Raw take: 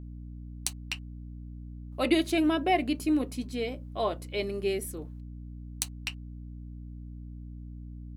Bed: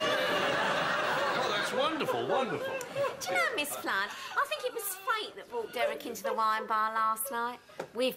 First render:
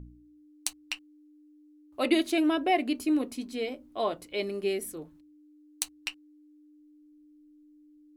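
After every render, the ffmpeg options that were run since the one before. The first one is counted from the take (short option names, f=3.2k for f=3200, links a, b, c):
-af "bandreject=f=60:t=h:w=4,bandreject=f=120:t=h:w=4,bandreject=f=180:t=h:w=4,bandreject=f=240:t=h:w=4"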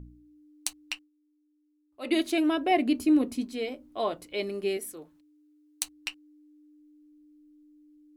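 -filter_complex "[0:a]asettb=1/sr,asplit=3[a][b][c];[a]atrim=end=2.714[d];[b]atrim=start=2.71:end=3.45,asetpts=PTS-STARTPTS,afade=t=in:d=0.004:c=qsin,afade=t=out:st=0.736:d=0.004:c=qsin,equalizer=f=110:w=0.44:g=9[e];[c]atrim=start=3.446[f];[d][e]acrossfade=d=0.004:c1=hsin:c2=qsin[g];[g][f]acrossfade=d=0.004:c1=qsin:c2=hsin,asettb=1/sr,asplit=3[h][i][j];[h]atrim=end=4.774[k];[i]atrim=start=4.77:end=5.83,asetpts=PTS-STARTPTS,afade=t=in:d=0.004:c=qsin,afade=t=out:st=1.056:d=0.004:c=qsin,lowshelf=f=250:g=-11.5[l];[j]atrim=start=5.826[m];[k][l]acrossfade=d=0.004:c1=hsin:c2=qsin[n];[n][m]acrossfade=d=0.004:c1=qsin:c2=hsin,asplit=3[o][p][q];[o]atrim=end=1.1,asetpts=PTS-STARTPTS,afade=t=out:st=0.93:d=0.17:silence=0.211349[r];[p]atrim=start=1.1:end=2.01,asetpts=PTS-STARTPTS,volume=-13.5dB[s];[q]atrim=start=2.01,asetpts=PTS-STARTPTS,afade=t=in:d=0.17:silence=0.211349[t];[r][s][t]concat=n=3:v=0:a=1"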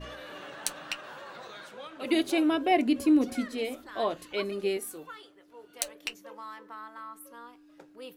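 -filter_complex "[1:a]volume=-14.5dB[a];[0:a][a]amix=inputs=2:normalize=0"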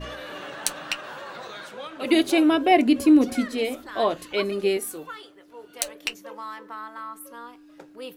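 -af "volume=6.5dB,alimiter=limit=-3dB:level=0:latency=1"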